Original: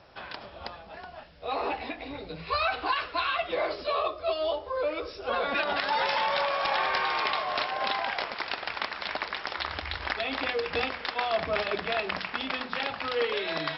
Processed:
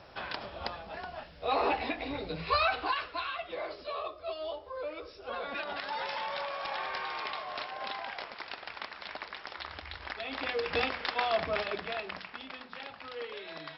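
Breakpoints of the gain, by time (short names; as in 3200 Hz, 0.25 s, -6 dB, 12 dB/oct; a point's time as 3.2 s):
2.45 s +2 dB
3.37 s -9 dB
10.14 s -9 dB
10.72 s -1 dB
11.29 s -1 dB
12.49 s -12.5 dB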